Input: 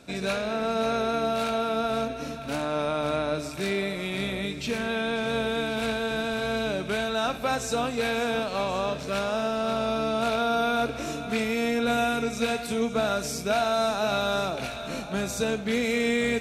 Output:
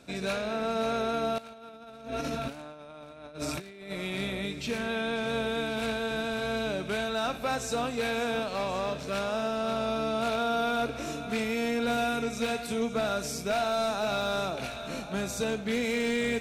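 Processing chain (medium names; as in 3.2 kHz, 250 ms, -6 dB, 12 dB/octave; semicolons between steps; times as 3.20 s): 1.38–3.92 s: compressor with a negative ratio -35 dBFS, ratio -0.5; overload inside the chain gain 19.5 dB; trim -3 dB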